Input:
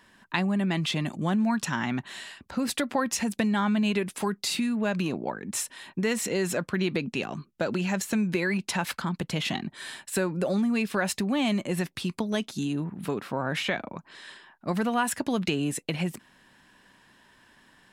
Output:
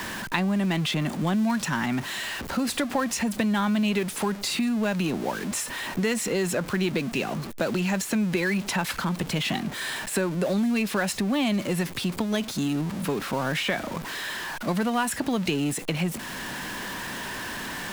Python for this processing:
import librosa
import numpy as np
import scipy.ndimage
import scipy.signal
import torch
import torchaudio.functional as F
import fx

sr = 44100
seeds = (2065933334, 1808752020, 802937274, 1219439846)

y = x + 0.5 * 10.0 ** (-33.0 / 20.0) * np.sign(x)
y = fx.band_squash(y, sr, depth_pct=40)